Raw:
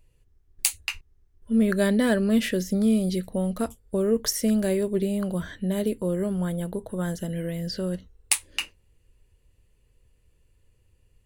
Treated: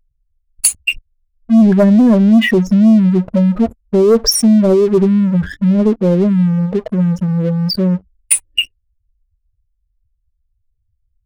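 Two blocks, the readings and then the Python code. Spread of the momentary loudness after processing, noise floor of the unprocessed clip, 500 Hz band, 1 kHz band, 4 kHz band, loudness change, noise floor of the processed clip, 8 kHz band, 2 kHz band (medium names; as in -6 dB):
8 LU, -65 dBFS, +12.0 dB, +10.5 dB, +13.0 dB, +13.5 dB, -67 dBFS, +11.5 dB, +10.0 dB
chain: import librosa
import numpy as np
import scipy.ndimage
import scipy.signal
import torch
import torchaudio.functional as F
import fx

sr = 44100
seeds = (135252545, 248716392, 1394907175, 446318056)

y = fx.spec_expand(x, sr, power=2.8)
y = fx.leveller(y, sr, passes=3)
y = y * librosa.db_to_amplitude(4.0)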